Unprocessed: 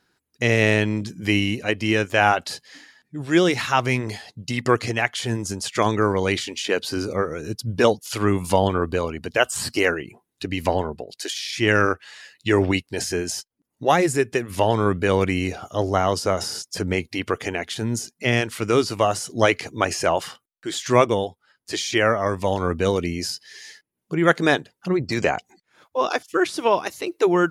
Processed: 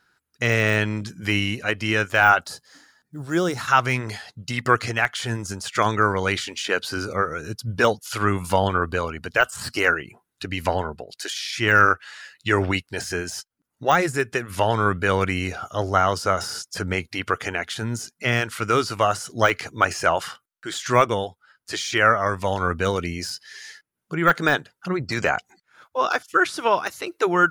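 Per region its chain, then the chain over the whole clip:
2.41–3.68 block floating point 7-bit + bell 2400 Hz -13 dB 1.5 oct
whole clip: bell 1400 Hz +9 dB 0.48 oct; de-esser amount 55%; bell 310 Hz -5 dB 1.6 oct

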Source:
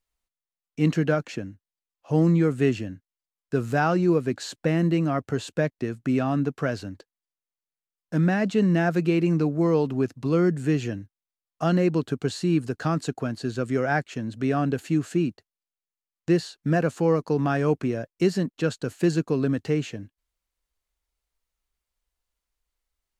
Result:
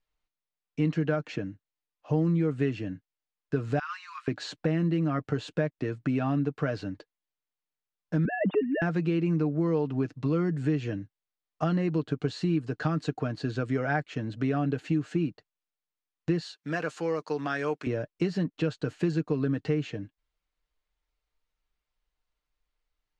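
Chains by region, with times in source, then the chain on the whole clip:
3.79–4.28 steep high-pass 1000 Hz 96 dB/oct + compressor 5:1, threshold -30 dBFS
8.25–8.82 sine-wave speech + air absorption 250 m + mismatched tape noise reduction encoder only
16.41–17.87 HPF 960 Hz 6 dB/oct + high shelf 6400 Hz +9.5 dB
whole clip: LPF 4200 Hz 12 dB/oct; comb 6.6 ms, depth 47%; compressor 3:1, threshold -25 dBFS

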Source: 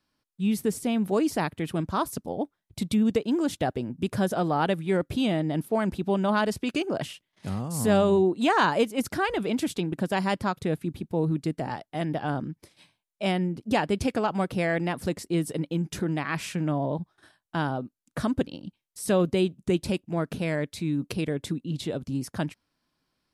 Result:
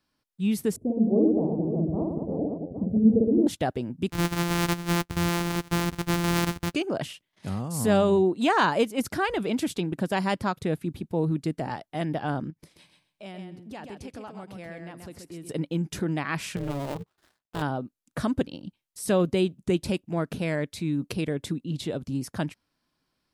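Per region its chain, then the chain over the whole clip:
0.76–3.47 inverse Chebyshev low-pass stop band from 1500 Hz, stop band 50 dB + reverse bouncing-ball echo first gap 50 ms, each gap 1.4×, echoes 6, each echo -2 dB
4.1–6.74 sample sorter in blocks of 256 samples + bell 580 Hz -14.5 dB 0.33 oct
12.5–15.49 compressor 2:1, threshold -50 dBFS + feedback echo 0.13 s, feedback 17%, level -6 dB
16.56–17.62 switching dead time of 0.21 ms + AM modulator 280 Hz, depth 85%
whole clip: dry

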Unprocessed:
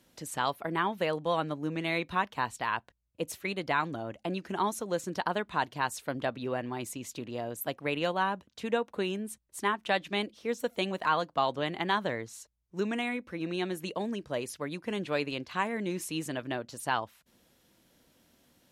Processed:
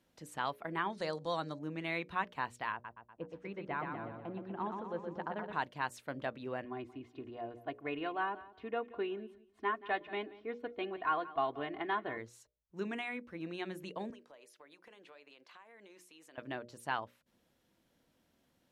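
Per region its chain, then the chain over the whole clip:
0.9–1.59 steep low-pass 10000 Hz 72 dB/oct + resonant high shelf 3500 Hz +8 dB, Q 3 + upward compressor, threshold -33 dBFS
2.72–5.53 tape spacing loss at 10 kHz 38 dB + feedback echo 0.122 s, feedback 57%, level -5 dB
6.64–12.18 air absorption 370 m + comb 2.8 ms, depth 73% + feedback echo 0.179 s, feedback 23%, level -17.5 dB
14.1–16.38 HPF 530 Hz + compressor 8:1, threshold -45 dBFS
whole clip: high shelf 3600 Hz -7.5 dB; notches 60/120/180/240/300/360/420/480/540/600 Hz; dynamic EQ 2000 Hz, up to +4 dB, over -44 dBFS, Q 0.95; gain -7 dB

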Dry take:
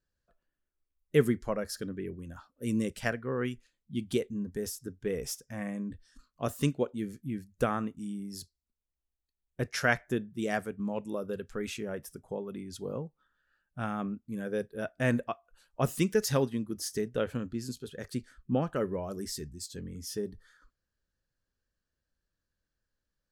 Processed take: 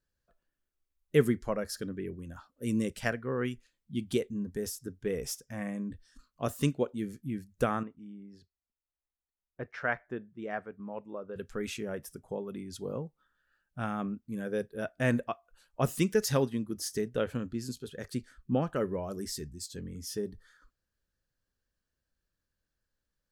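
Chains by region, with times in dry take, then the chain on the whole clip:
7.83–11.36 LPF 1500 Hz + low shelf 450 Hz -11 dB
whole clip: dry

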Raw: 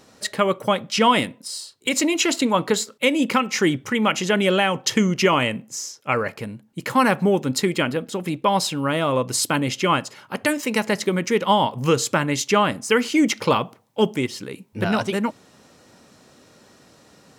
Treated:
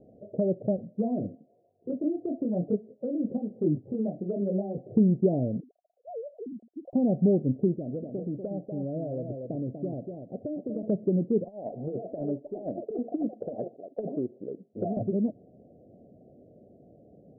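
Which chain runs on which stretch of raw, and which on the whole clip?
0.76–4.78 thin delay 0.152 s, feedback 81%, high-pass 2400 Hz, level -18.5 dB + detuned doubles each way 35 cents
5.6–6.93 sine-wave speech + compressor, threshold -33 dBFS
7.74–10.83 compressor 2:1, threshold -33 dBFS + echo 0.242 s -7 dB
11.44–14.97 weighting filter A + negative-ratio compressor -24 dBFS, ratio -0.5 + echoes that change speed 0.242 s, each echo +6 st, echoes 2, each echo -6 dB
whole clip: Chebyshev low-pass 720 Hz, order 8; dynamic EQ 560 Hz, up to -7 dB, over -33 dBFS, Q 0.93

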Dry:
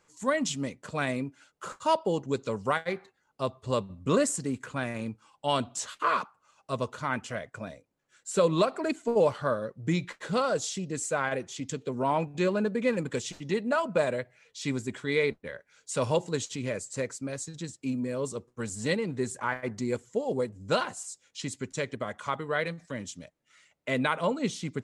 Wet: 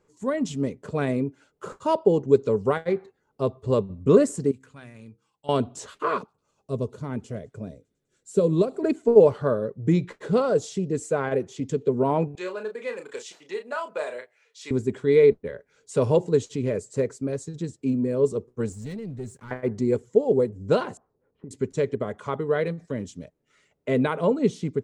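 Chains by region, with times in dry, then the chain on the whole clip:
4.51–5.49 passive tone stack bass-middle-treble 5-5-5 + de-hum 66.05 Hz, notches 8
6.18–8.83 bell 1400 Hz -11 dB 2.7 oct + thin delay 0.101 s, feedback 78%, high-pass 3700 Hz, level -24 dB
12.35–14.71 HPF 970 Hz + doubler 33 ms -7.5 dB
18.72–19.51 passive tone stack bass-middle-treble 6-0-2 + sample leveller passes 3
20.97–21.51 LPF 1200 Hz 24 dB/oct + compressor 8:1, threshold -43 dBFS
whole clip: tilt shelf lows +6.5 dB, about 810 Hz; AGC gain up to 3.5 dB; bell 420 Hz +10 dB 0.31 oct; gain -2.5 dB

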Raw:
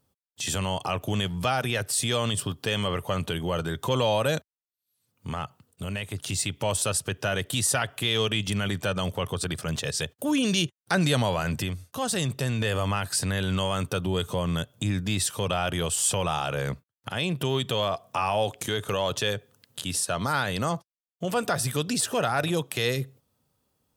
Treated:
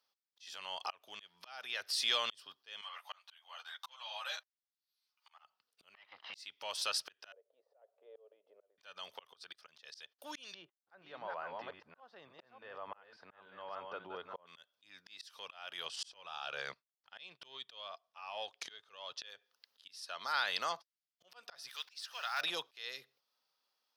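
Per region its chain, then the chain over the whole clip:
2.81–5.44 steep high-pass 660 Hz + ensemble effect
5.94–6.34 minimum comb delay 1 ms + overdrive pedal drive 19 dB, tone 2400 Hz, clips at -18 dBFS + air absorption 360 m
7.32–8.78 Butterworth band-pass 520 Hz, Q 3.1 + auto swell 0.338 s
10.54–14.47 reverse delay 0.292 s, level -5.5 dB + LPF 1000 Hz
15.85–19.26 LPF 7500 Hz + low shelf 110 Hz +11 dB + transient shaper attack +7 dB, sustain -10 dB
21.69–22.41 block floating point 5-bit + HPF 1000 Hz + de-esser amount 30%
whole clip: HPF 960 Hz 12 dB/oct; resonant high shelf 6300 Hz -8 dB, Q 3; auto swell 0.639 s; gain -4 dB

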